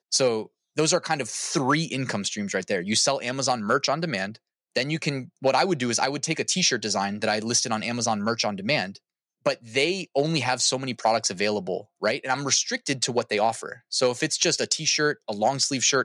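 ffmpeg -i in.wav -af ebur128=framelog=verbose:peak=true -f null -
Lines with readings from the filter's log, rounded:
Integrated loudness:
  I:         -24.5 LUFS
  Threshold: -34.6 LUFS
Loudness range:
  LRA:         1.6 LU
  Threshold: -44.7 LUFS
  LRA low:   -25.4 LUFS
  LRA high:  -23.8 LUFS
True peak:
  Peak:       -8.1 dBFS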